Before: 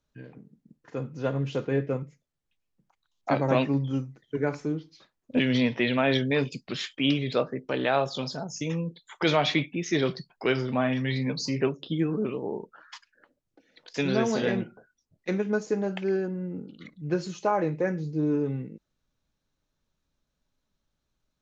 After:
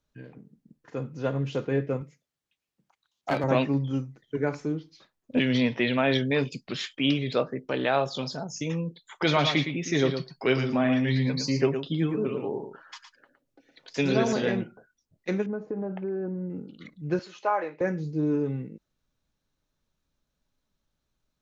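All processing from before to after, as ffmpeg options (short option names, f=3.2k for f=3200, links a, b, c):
-filter_complex "[0:a]asettb=1/sr,asplit=3[a][b][c];[a]atrim=end=2.014[d];[b]atrim=start=2.01:end=3.44,asetpts=PTS-STARTPTS,afade=t=in:d=0.004:c=qsin,afade=t=out:st=1.426:d=0.004:c=qsin,equalizer=f=3.5k:w=0.44:g=3.5,aeval=exprs='clip(val(0),-1,0.0794)':c=same,highpass=f=150:p=1[e];[c]atrim=start=3.436[f];[d][e]acrossfade=d=0.004:c1=hsin:c2=qsin[g];[g][f]acrossfade=d=0.004:c1=qsin:c2=hsin,asettb=1/sr,asplit=3[h][i][j];[h]atrim=end=9.254[k];[i]atrim=start=9.25:end=14.33,asetpts=PTS-STARTPTS,afade=t=in:d=0.004:c=qsin,afade=t=out:st=5.076:d=0.004:c=qsin,aecho=1:1:7.4:0.35,atrim=end_sample=224028,aecho=1:1:113:0.398,atrim=end_sample=224028[l];[j]atrim=start=14.326[m];[k][l]acrossfade=d=0.004:c1=hsin:c2=qsin[n];[n][m]acrossfade=d=0.004:c1=qsin:c2=hsin,asettb=1/sr,asplit=3[o][p][q];[o]atrim=end=15.464[r];[p]atrim=start=15.46:end=16.5,asetpts=PTS-STARTPTS,afade=t=in:d=0.004:c=qsin,afade=t=out:st=1.036:d=0.004:c=qsin,lowpass=1.1k,acompressor=threshold=-27dB:ratio=6:attack=3.2:release=140:knee=1:detection=peak[s];[q]atrim=start=16.496[t];[r][s]acrossfade=d=0.004:c1=hsin:c2=qsin[u];[u][t]acrossfade=d=0.004:c1=qsin:c2=hsin,asettb=1/sr,asplit=3[v][w][x];[v]atrim=end=17.194[y];[w]atrim=start=17.19:end=17.81,asetpts=PTS-STARTPTS,afade=t=in:d=0.004:c=qsin,afade=t=out:st=0.616:d=0.004:c=qsin,highpass=570,lowpass=3.8k,equalizer=f=1.5k:t=o:w=1.6:g=2.5[z];[x]atrim=start=17.806[aa];[y][z]acrossfade=d=0.004:c1=hsin:c2=qsin[ab];[ab][aa]acrossfade=d=0.004:c1=qsin:c2=hsin"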